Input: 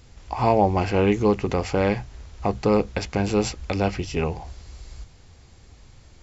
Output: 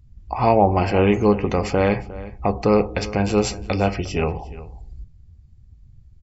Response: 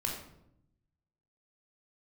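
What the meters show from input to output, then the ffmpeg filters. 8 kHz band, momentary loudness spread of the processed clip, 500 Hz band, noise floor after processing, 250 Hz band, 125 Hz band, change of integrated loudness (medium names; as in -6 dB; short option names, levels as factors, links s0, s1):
no reading, 12 LU, +3.0 dB, -49 dBFS, +2.5 dB, +2.5 dB, +3.0 dB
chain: -filter_complex "[0:a]asplit=2[s0][s1];[1:a]atrim=start_sample=2205,asetrate=52920,aresample=44100,lowshelf=f=230:g=-12[s2];[s1][s2]afir=irnorm=-1:irlink=0,volume=0.316[s3];[s0][s3]amix=inputs=2:normalize=0,afftdn=nr=27:nf=-41,asplit=2[s4][s5];[s5]adelay=355.7,volume=0.141,highshelf=f=4000:g=-8[s6];[s4][s6]amix=inputs=2:normalize=0,volume=1.19"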